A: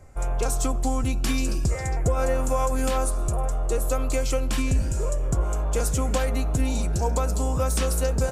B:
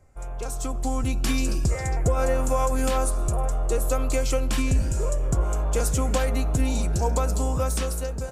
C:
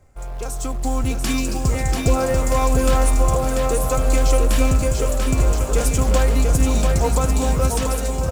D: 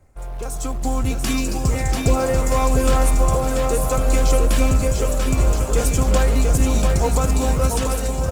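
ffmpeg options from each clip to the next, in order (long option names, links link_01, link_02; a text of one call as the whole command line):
ffmpeg -i in.wav -af "dynaudnorm=framelen=320:gausssize=5:maxgain=10dB,volume=-8.5dB" out.wav
ffmpeg -i in.wav -filter_complex "[0:a]asplit=2[link_01][link_02];[link_02]acrusher=bits=3:mode=log:mix=0:aa=0.000001,volume=-6.5dB[link_03];[link_01][link_03]amix=inputs=2:normalize=0,aecho=1:1:690|1276|1775|2199|2559:0.631|0.398|0.251|0.158|0.1" out.wav
ffmpeg -i in.wav -ar 48000 -c:a libopus -b:a 24k out.opus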